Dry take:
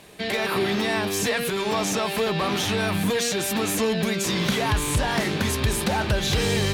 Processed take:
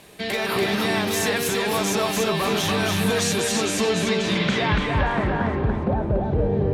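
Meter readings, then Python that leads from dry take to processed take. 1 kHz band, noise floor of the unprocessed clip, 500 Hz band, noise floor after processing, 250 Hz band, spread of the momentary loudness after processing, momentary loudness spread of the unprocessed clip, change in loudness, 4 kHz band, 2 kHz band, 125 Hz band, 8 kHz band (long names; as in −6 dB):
+2.0 dB, −28 dBFS, +2.0 dB, −27 dBFS, +2.0 dB, 2 LU, 2 LU, +1.5 dB, +0.5 dB, +1.0 dB, +2.0 dB, 0.0 dB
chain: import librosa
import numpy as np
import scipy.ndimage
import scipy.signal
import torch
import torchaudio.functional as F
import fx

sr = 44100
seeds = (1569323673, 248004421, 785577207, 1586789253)

p1 = fx.filter_sweep_lowpass(x, sr, from_hz=15000.0, to_hz=580.0, start_s=2.87, end_s=5.99, q=1.2)
y = p1 + fx.echo_feedback(p1, sr, ms=287, feedback_pct=26, wet_db=-3.0, dry=0)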